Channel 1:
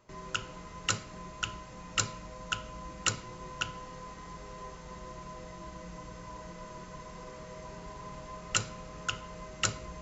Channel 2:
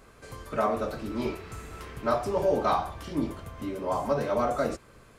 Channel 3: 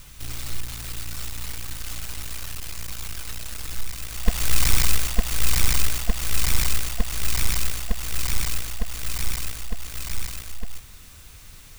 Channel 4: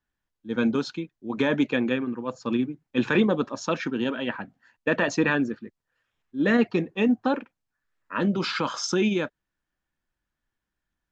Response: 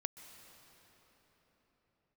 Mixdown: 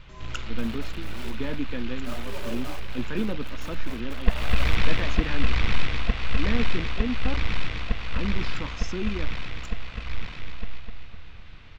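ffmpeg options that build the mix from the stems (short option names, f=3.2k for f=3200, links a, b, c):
-filter_complex "[0:a]volume=17dB,asoftclip=hard,volume=-17dB,volume=-3dB[a];[1:a]lowshelf=f=100:g=9,tremolo=f=0.85:d=0.68,acrusher=bits=4:mix=0:aa=0.000001,volume=-13dB,asplit=2[b][c];[c]volume=-10.5dB[d];[2:a]lowpass=f=3.4k:w=0.5412,lowpass=f=3.4k:w=1.3066,volume=-0.5dB,asplit=2[e][f];[f]volume=-5dB[g];[3:a]lowshelf=f=250:g=10.5,volume=-13dB,asplit=2[h][i];[i]apad=whole_len=441639[j];[a][j]sidechaincompress=threshold=-52dB:ratio=8:attack=16:release=1030[k];[d][g]amix=inputs=2:normalize=0,aecho=0:1:254|508|762|1016|1270|1524|1778:1|0.48|0.23|0.111|0.0531|0.0255|0.0122[l];[k][b][e][h][l]amix=inputs=5:normalize=0"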